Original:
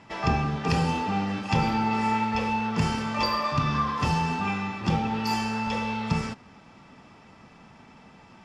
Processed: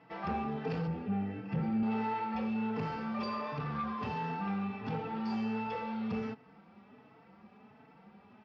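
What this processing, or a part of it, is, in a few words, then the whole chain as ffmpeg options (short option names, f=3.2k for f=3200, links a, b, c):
barber-pole flanger into a guitar amplifier: -filter_complex "[0:a]asplit=2[a][b];[b]adelay=4.1,afreqshift=1.4[c];[a][c]amix=inputs=2:normalize=1,asoftclip=type=tanh:threshold=-25dB,highpass=89,equalizer=f=210:t=q:w=4:g=8,equalizer=f=440:t=q:w=4:g=9,equalizer=f=750:t=q:w=4:g=5,equalizer=f=1.4k:t=q:w=4:g=3,equalizer=f=3.4k:t=q:w=4:g=-4,lowpass=f=4.1k:w=0.5412,lowpass=f=4.1k:w=1.3066,asettb=1/sr,asplit=3[d][e][f];[d]atrim=end=0.874[g];[e]atrim=start=0.87:end=1.83,asetpts=PTS-STARTPTS,afade=t=in:d=0.004:c=qsin,afade=t=out:st=0.956:d=0.004:c=qsin,equalizer=f=125:t=o:w=1:g=7,equalizer=f=1k:t=o:w=1:g=-10,equalizer=f=4k:t=o:w=1:g=-9,equalizer=f=8k:t=o:w=1:g=-10[h];[f]atrim=start=1.826[i];[g][h]acrossfade=d=0.004:c1=hsin:c2=qsin[j];[j][i]acrossfade=d=0.004:c1=qsin:c2=hsin,volume=-7.5dB"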